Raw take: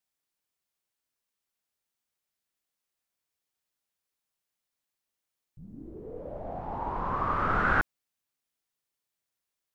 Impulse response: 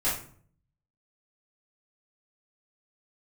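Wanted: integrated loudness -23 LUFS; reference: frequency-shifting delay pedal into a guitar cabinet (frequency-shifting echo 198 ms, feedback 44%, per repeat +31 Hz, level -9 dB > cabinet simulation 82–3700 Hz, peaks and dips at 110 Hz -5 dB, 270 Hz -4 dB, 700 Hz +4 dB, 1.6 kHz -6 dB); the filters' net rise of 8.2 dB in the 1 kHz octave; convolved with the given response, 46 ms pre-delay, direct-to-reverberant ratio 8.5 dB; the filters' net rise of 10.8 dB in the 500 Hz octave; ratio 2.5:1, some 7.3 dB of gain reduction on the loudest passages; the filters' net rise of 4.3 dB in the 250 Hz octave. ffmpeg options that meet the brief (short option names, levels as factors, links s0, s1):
-filter_complex "[0:a]equalizer=f=250:t=o:g=5,equalizer=f=500:t=o:g=8.5,equalizer=f=1000:t=o:g=8,acompressor=threshold=0.0447:ratio=2.5,asplit=2[s0][s1];[1:a]atrim=start_sample=2205,adelay=46[s2];[s1][s2]afir=irnorm=-1:irlink=0,volume=0.126[s3];[s0][s3]amix=inputs=2:normalize=0,asplit=6[s4][s5][s6][s7][s8][s9];[s5]adelay=198,afreqshift=31,volume=0.355[s10];[s6]adelay=396,afreqshift=62,volume=0.157[s11];[s7]adelay=594,afreqshift=93,volume=0.0684[s12];[s8]adelay=792,afreqshift=124,volume=0.0302[s13];[s9]adelay=990,afreqshift=155,volume=0.0133[s14];[s4][s10][s11][s12][s13][s14]amix=inputs=6:normalize=0,highpass=82,equalizer=f=110:t=q:w=4:g=-5,equalizer=f=270:t=q:w=4:g=-4,equalizer=f=700:t=q:w=4:g=4,equalizer=f=1600:t=q:w=4:g=-6,lowpass=f=3700:w=0.5412,lowpass=f=3700:w=1.3066,volume=1.88"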